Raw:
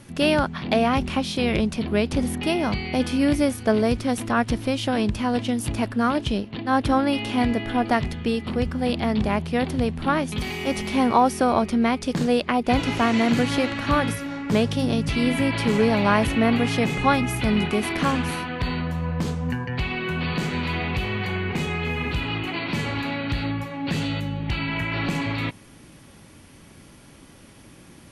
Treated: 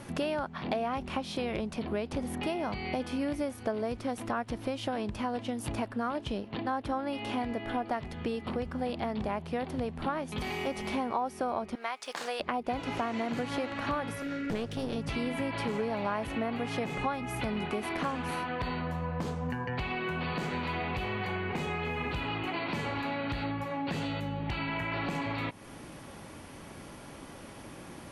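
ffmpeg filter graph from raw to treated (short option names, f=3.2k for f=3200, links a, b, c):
-filter_complex "[0:a]asettb=1/sr,asplit=3[a][b][c];[a]atrim=end=11.754[d];[b]atrim=start=11.75:end=12.4,asetpts=PTS-STARTPTS,afade=t=in:d=0.004:c=qsin,afade=t=out:st=0.646:d=0.004:c=qsin,highpass=1k,aeval=exprs='sgn(val(0))*max(abs(val(0))-0.00133,0)':c=same[e];[c]atrim=start=12.396[f];[d][e]acrossfade=d=0.004:c1=hsin:c2=qsin[g];[g][f]acrossfade=d=0.004:c1=qsin:c2=hsin,asettb=1/sr,asplit=3[h][i][j];[h]atrim=end=14.224[k];[i]atrim=start=14.22:end=14.96,asetpts=PTS-STARTPTS,afade=t=in:d=0.004:c=qsin,afade=t=out:st=0.736:d=0.004:c=qsin,asuperstop=centerf=870:order=8:qfactor=1.2,aeval=exprs='clip(val(0),-1,0.0398)':c=same[l];[j]atrim=start=14.956[m];[k][l]acrossfade=d=0.004:c1=hsin:c2=qsin[n];[n][m]acrossfade=d=0.004:c1=qsin:c2=hsin,equalizer=f=780:t=o:w=2.3:g=8.5,acompressor=threshold=-31dB:ratio=4,volume=-1.5dB"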